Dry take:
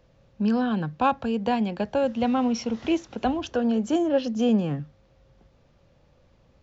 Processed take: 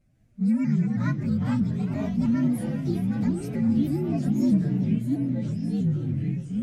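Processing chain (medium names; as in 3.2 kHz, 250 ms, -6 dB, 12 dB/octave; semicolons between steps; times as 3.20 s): frequency axis rescaled in octaves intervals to 120%; recorder AGC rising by 6.5 dB/s; tape echo 405 ms, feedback 47%, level -9 dB, low-pass 4.5 kHz; ever faster or slower copies 154 ms, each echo -4 st, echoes 3; graphic EQ 125/250/500/1000/2000/4000 Hz +4/+8/-10/-11/+3/-8 dB; vibrato with a chosen wave saw up 3.1 Hz, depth 100 cents; trim -4.5 dB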